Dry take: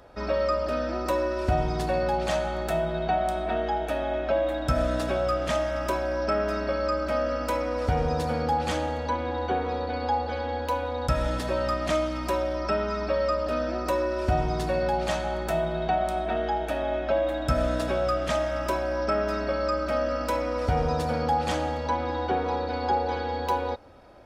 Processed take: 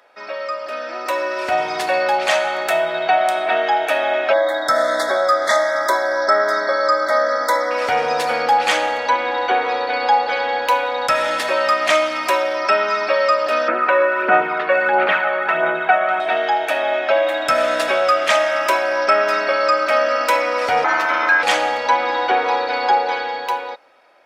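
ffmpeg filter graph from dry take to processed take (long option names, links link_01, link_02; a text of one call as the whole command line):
ffmpeg -i in.wav -filter_complex "[0:a]asettb=1/sr,asplit=3[link_01][link_02][link_03];[link_01]atrim=end=4.334[link_04];[link_02]atrim=start=4.33:end=7.71,asetpts=PTS-STARTPTS,afade=type=in:duration=0.004:curve=qsin,afade=type=out:start_time=3.376:duration=0.004:curve=qsin,asuperstop=centerf=2700:order=20:qfactor=2.2,lowshelf=frequency=120:gain=-10.5[link_05];[link_03]atrim=start=7.706[link_06];[link_04][link_05]acrossfade=duration=0.004:curve1=hsin:curve2=qsin[link_07];[link_07][link_06]acrossfade=duration=0.004:curve1=qsin:curve2=hsin,asettb=1/sr,asplit=3[link_08][link_09][link_10];[link_08]atrim=end=13.684[link_11];[link_09]atrim=start=13.68:end=16.2,asetpts=PTS-STARTPTS,afade=type=in:duration=0.004:curve=qsin,afade=type=out:start_time=2.516:duration=0.004:curve=qsin,highpass=frequency=180:width=0.5412,highpass=frequency=180:width=1.3066,equalizer=frequency=190:width_type=q:width=4:gain=8,equalizer=frequency=430:width_type=q:width=4:gain=5,equalizer=frequency=680:width_type=q:width=4:gain=-5,equalizer=frequency=1400:width_type=q:width=4:gain=9,lowpass=frequency=2700:width=0.5412,lowpass=frequency=2700:width=1.3066,aphaser=in_gain=1:out_gain=1:delay=1.8:decay=0.43:speed=1.5:type=sinusoidal[link_12];[link_10]atrim=start=16.196[link_13];[link_11][link_12]acrossfade=duration=0.004:curve1=hsin:curve2=qsin[link_14];[link_14][link_13]acrossfade=duration=0.004:curve1=qsin:curve2=hsin,asettb=1/sr,asplit=3[link_15][link_16][link_17];[link_15]atrim=end=20.844[link_18];[link_16]atrim=start=20.84:end=21.43,asetpts=PTS-STARTPTS,afade=type=in:duration=0.004:curve=qsin,afade=type=out:start_time=0.586:duration=0.004:curve=qsin,equalizer=frequency=9000:width_type=o:width=0.79:gain=-14.5,aeval=exprs='val(0)*sin(2*PI*800*n/s)':channel_layout=same[link_19];[link_17]atrim=start=21.426[link_20];[link_18][link_19]acrossfade=duration=0.004:curve1=hsin:curve2=qsin[link_21];[link_21][link_20]acrossfade=duration=0.004:curve1=qsin:curve2=hsin,highpass=600,equalizer=frequency=2200:width=1.4:gain=7.5,dynaudnorm=framelen=110:gausssize=21:maxgain=12.5dB" out.wav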